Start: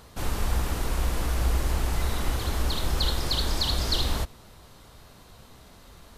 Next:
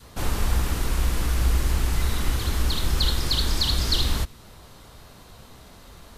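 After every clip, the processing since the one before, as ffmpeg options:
-af "adynamicequalizer=threshold=0.00316:dfrequency=660:dqfactor=0.99:tfrequency=660:tqfactor=0.99:attack=5:release=100:ratio=0.375:range=3.5:mode=cutabove:tftype=bell,volume=3.5dB"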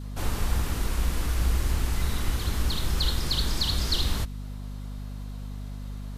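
-af "aeval=exprs='val(0)+0.0282*(sin(2*PI*50*n/s)+sin(2*PI*2*50*n/s)/2+sin(2*PI*3*50*n/s)/3+sin(2*PI*4*50*n/s)/4+sin(2*PI*5*50*n/s)/5)':c=same,volume=-3.5dB"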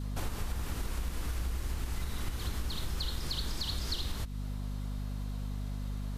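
-af "acompressor=threshold=-31dB:ratio=6"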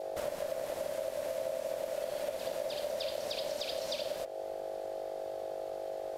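-af "bandreject=f=92.3:t=h:w=4,bandreject=f=184.6:t=h:w=4,bandreject=f=276.9:t=h:w=4,bandreject=f=369.2:t=h:w=4,bandreject=f=461.5:t=h:w=4,bandreject=f=553.8:t=h:w=4,bandreject=f=646.1:t=h:w=4,bandreject=f=738.4:t=h:w=4,bandreject=f=830.7:t=h:w=4,bandreject=f=923:t=h:w=4,bandreject=f=1.0153k:t=h:w=4,bandreject=f=1.1076k:t=h:w=4,bandreject=f=1.1999k:t=h:w=4,bandreject=f=1.2922k:t=h:w=4,bandreject=f=1.3845k:t=h:w=4,bandreject=f=1.4768k:t=h:w=4,bandreject=f=1.5691k:t=h:w=4,bandreject=f=1.6614k:t=h:w=4,bandreject=f=1.7537k:t=h:w=4,bandreject=f=1.846k:t=h:w=4,bandreject=f=1.9383k:t=h:w=4,bandreject=f=2.0306k:t=h:w=4,bandreject=f=2.1229k:t=h:w=4,bandreject=f=2.2152k:t=h:w=4,bandreject=f=2.3075k:t=h:w=4,bandreject=f=2.3998k:t=h:w=4,bandreject=f=2.4921k:t=h:w=4,bandreject=f=2.5844k:t=h:w=4,bandreject=f=2.6767k:t=h:w=4,aeval=exprs='val(0)*sin(2*PI*590*n/s)':c=same"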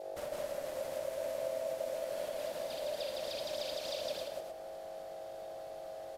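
-af "aecho=1:1:46.65|160.3|268.2:0.316|0.794|0.501,volume=-5dB"

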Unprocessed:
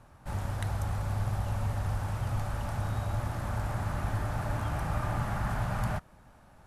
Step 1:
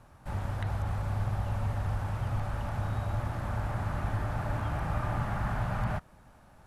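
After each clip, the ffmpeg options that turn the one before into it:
-filter_complex "[0:a]acrossover=split=3800[a][b];[b]acompressor=threshold=-59dB:ratio=4:attack=1:release=60[c];[a][c]amix=inputs=2:normalize=0"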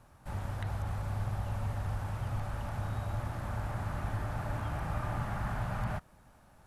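-af "highshelf=f=5.6k:g=5,volume=-3.5dB"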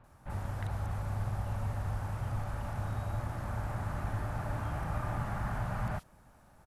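-filter_complex "[0:a]acrossover=split=3300[a][b];[b]adelay=40[c];[a][c]amix=inputs=2:normalize=0"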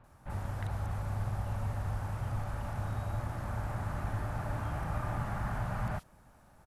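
-af anull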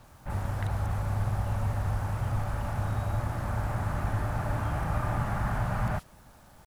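-af "acrusher=bits=10:mix=0:aa=0.000001,volume=5.5dB"

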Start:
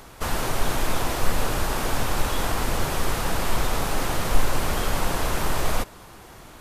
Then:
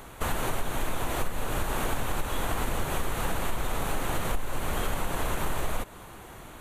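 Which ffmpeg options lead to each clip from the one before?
-af "equalizer=f=5.1k:t=o:w=0.37:g=-12.5,acompressor=threshold=-23dB:ratio=10"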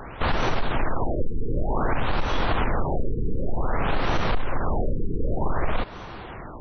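-af "aeval=exprs='0.178*sin(PI/2*1.58*val(0)/0.178)':c=same,afftfilt=real='re*lt(b*sr/1024,470*pow(6200/470,0.5+0.5*sin(2*PI*0.54*pts/sr)))':imag='im*lt(b*sr/1024,470*pow(6200/470,0.5+0.5*sin(2*PI*0.54*pts/sr)))':win_size=1024:overlap=0.75"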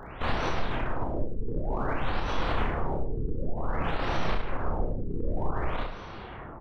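-filter_complex "[0:a]asplit=2[a][b];[b]volume=31dB,asoftclip=hard,volume=-31dB,volume=-12dB[c];[a][c]amix=inputs=2:normalize=0,aecho=1:1:30|64.5|104.2|149.8|202.3:0.631|0.398|0.251|0.158|0.1,volume=-7.5dB"

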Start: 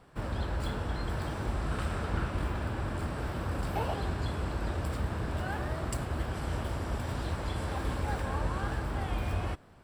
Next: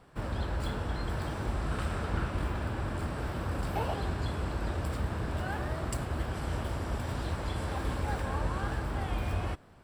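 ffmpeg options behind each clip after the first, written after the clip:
-af anull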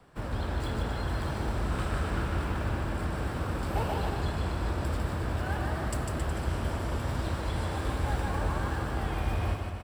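-filter_complex "[0:a]acrossover=split=150|1100|1600[a][b][c][d];[c]acrusher=bits=3:mode=log:mix=0:aa=0.000001[e];[a][b][e][d]amix=inputs=4:normalize=0,aecho=1:1:150|270|366|442.8|504.2:0.631|0.398|0.251|0.158|0.1"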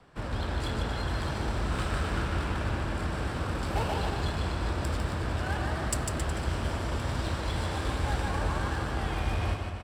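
-af "crystalizer=i=3.5:c=0,adynamicsmooth=sensitivity=5:basefreq=4k"

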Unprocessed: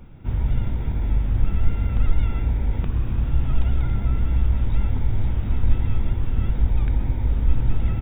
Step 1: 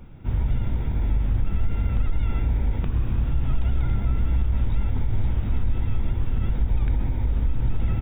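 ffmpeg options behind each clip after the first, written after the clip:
-af "alimiter=limit=-14dB:level=0:latency=1:release=50"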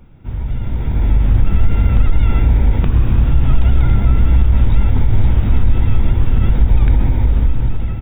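-af "dynaudnorm=f=340:g=5:m=12dB"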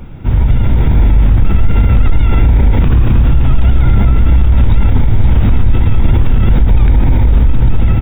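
-af "alimiter=level_in=15dB:limit=-1dB:release=50:level=0:latency=1,volume=-1dB"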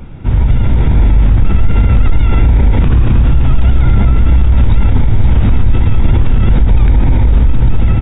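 -af "aresample=11025,aresample=44100"

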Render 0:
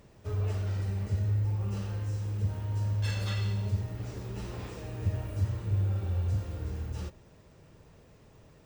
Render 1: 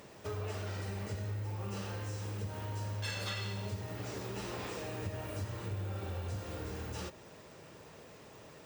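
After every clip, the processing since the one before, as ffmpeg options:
-af "highpass=f=410:p=1,acompressor=threshold=-47dB:ratio=2.5,volume=8.5dB"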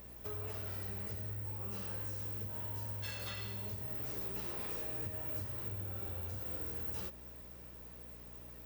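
-af "aeval=exprs='val(0)+0.00355*(sin(2*PI*60*n/s)+sin(2*PI*2*60*n/s)/2+sin(2*PI*3*60*n/s)/3+sin(2*PI*4*60*n/s)/4+sin(2*PI*5*60*n/s)/5)':c=same,aexciter=amount=6.1:drive=3.5:freq=11k,volume=-6dB"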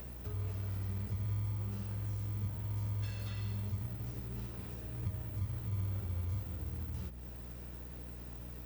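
-filter_complex "[0:a]acrossover=split=190[a][b];[b]acompressor=threshold=-55dB:ratio=6[c];[a][c]amix=inputs=2:normalize=0,asplit=2[d][e];[e]acrusher=samples=40:mix=1:aa=0.000001,volume=-9dB[f];[d][f]amix=inputs=2:normalize=0,volume=6.5dB"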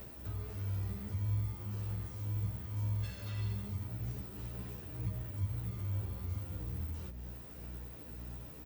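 -filter_complex "[0:a]asplit=2[a][b];[b]adelay=11.9,afreqshift=1.9[c];[a][c]amix=inputs=2:normalize=1,volume=3dB"

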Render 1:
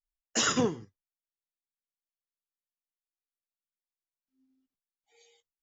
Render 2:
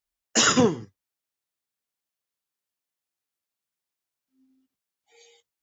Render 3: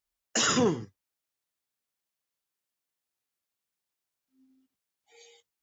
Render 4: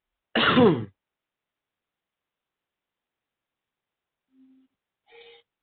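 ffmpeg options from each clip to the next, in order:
-af "highpass=58,volume=7.5dB"
-af "alimiter=limit=-16dB:level=0:latency=1:release=19"
-af "volume=7.5dB" -ar 8000 -c:a adpcm_ima_wav

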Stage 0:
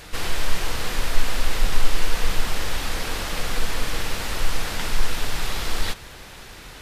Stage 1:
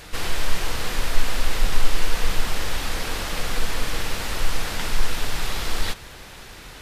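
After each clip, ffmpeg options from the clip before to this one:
-af anull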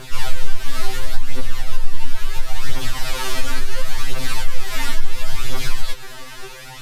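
-af "aphaser=in_gain=1:out_gain=1:delay=3.6:decay=0.67:speed=0.72:type=triangular,acompressor=threshold=-15dB:ratio=6,afftfilt=real='re*2.45*eq(mod(b,6),0)':imag='im*2.45*eq(mod(b,6),0)':win_size=2048:overlap=0.75,volume=5dB"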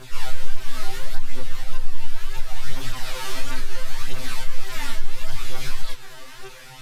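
-af "flanger=delay=15.5:depth=6.4:speed=1.7,volume=-2.5dB"

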